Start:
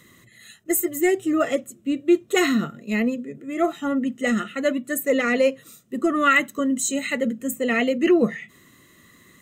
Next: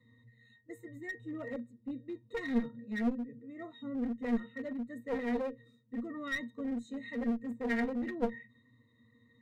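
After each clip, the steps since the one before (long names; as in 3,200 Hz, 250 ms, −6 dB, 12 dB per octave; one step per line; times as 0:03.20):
resonances in every octave A#, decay 0.17 s
asymmetric clip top −35 dBFS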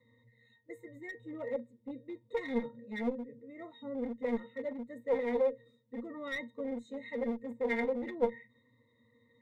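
hollow resonant body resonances 530/870/2,100/3,500 Hz, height 14 dB, ringing for 25 ms
level −5.5 dB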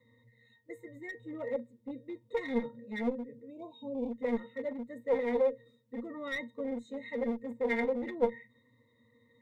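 time-frequency box erased 0:03.50–0:04.12, 1,100–2,200 Hz
level +1.5 dB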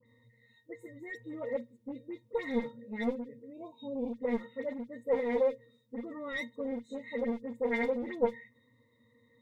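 all-pass dispersion highs, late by 64 ms, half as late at 2,600 Hz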